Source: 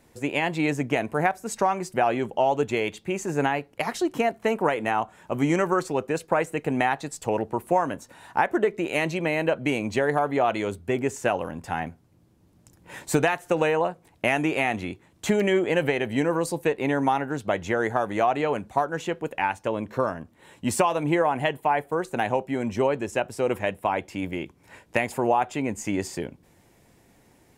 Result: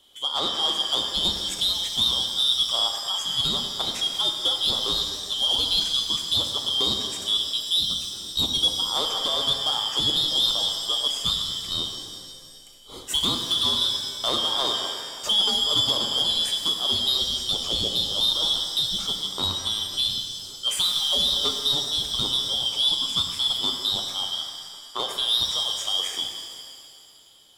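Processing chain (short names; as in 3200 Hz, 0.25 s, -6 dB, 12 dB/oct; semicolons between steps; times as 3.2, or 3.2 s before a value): four-band scrambler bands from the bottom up 2413; 24.3–24.98 band-pass 3200 Hz -> 1100 Hz, Q 1.2; soft clip -16.5 dBFS, distortion -15 dB; shimmer reverb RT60 2.1 s, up +7 st, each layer -8 dB, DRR 3 dB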